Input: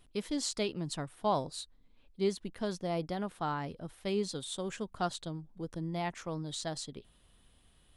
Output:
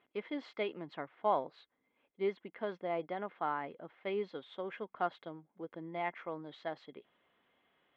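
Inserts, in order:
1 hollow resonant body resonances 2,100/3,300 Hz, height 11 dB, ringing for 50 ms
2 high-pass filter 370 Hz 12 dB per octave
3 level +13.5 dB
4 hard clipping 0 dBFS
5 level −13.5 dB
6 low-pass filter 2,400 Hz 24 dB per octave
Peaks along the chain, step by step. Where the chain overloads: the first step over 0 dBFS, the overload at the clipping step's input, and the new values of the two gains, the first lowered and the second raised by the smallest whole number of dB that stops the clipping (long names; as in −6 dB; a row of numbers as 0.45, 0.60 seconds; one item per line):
−19.0, −18.5, −5.0, −5.0, −18.5, −19.5 dBFS
no step passes full scale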